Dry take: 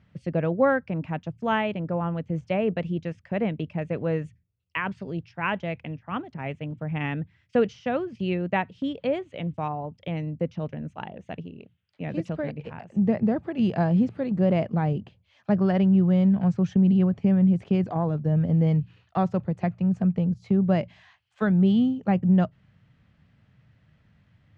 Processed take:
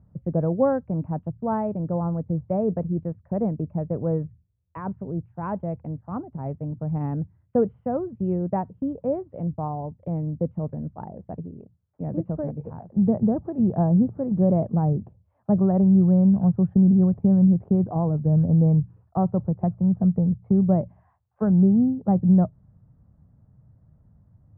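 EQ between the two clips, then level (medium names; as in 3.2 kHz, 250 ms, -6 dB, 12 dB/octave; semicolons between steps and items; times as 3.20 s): low-pass 1 kHz 24 dB/octave; bass shelf 100 Hz +11.5 dB; 0.0 dB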